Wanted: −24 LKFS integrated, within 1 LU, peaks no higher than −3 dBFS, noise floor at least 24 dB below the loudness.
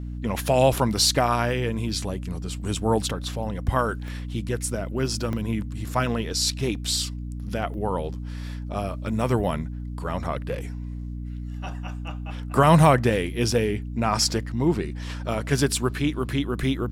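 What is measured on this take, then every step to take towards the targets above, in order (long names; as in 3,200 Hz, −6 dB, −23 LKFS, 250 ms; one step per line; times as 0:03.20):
number of dropouts 4; longest dropout 1.1 ms; mains hum 60 Hz; hum harmonics up to 300 Hz; level of the hum −30 dBFS; integrated loudness −25.0 LKFS; sample peak −5.0 dBFS; target loudness −24.0 LKFS
→ repair the gap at 0:04.08/0:05.33/0:07.74/0:16.31, 1.1 ms
hum removal 60 Hz, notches 5
level +1 dB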